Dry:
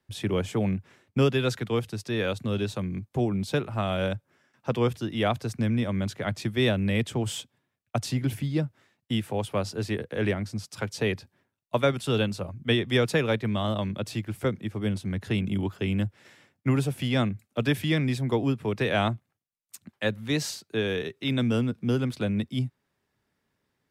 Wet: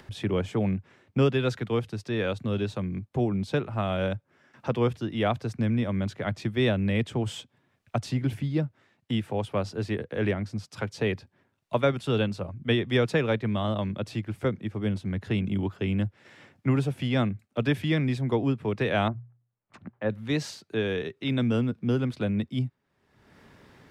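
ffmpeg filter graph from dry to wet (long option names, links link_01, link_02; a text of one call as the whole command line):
ffmpeg -i in.wav -filter_complex "[0:a]asettb=1/sr,asplit=3[link_01][link_02][link_03];[link_01]atrim=end=19.084[link_04];[link_02]atrim=start=19.08:end=20.1,asetpts=PTS-STARTPTS,afade=type=in:duration=0.004:curve=qsin,afade=type=out:start_time=1.016:duration=0.004:curve=qsin,lowpass=1300,bandreject=frequency=60:width_type=h:width=6,bandreject=frequency=120:width_type=h:width=6[link_05];[link_03]atrim=start=20.096[link_06];[link_04][link_05]acrossfade=duration=0.004:curve1=hsin:curve2=qsin[link_07];[link_07][link_06]acrossfade=duration=0.004:curve1=qsin:curve2=hsin,aemphasis=mode=reproduction:type=50kf,acompressor=mode=upward:threshold=-34dB:ratio=2.5" out.wav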